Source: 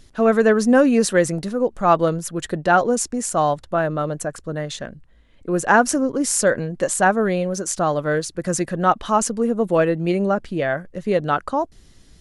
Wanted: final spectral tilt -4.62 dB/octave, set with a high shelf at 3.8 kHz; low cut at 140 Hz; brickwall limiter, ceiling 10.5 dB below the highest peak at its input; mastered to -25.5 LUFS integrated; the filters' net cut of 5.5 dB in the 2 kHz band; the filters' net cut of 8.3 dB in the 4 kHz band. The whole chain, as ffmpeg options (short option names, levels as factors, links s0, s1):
-af "highpass=140,equalizer=f=2000:t=o:g=-6,highshelf=f=3800:g=-4,equalizer=f=4000:t=o:g=-7,volume=0.944,alimiter=limit=0.178:level=0:latency=1"